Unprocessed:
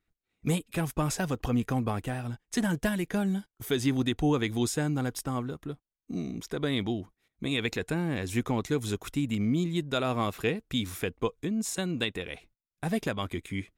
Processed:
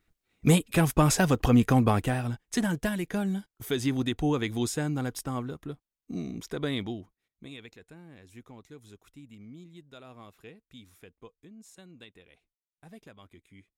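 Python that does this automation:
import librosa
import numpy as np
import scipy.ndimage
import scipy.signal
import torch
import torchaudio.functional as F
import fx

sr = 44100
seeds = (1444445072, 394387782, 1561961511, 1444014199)

y = fx.gain(x, sr, db=fx.line((1.94, 7.0), (2.79, -1.0), (6.68, -1.0), (7.46, -13.0), (7.74, -20.0)))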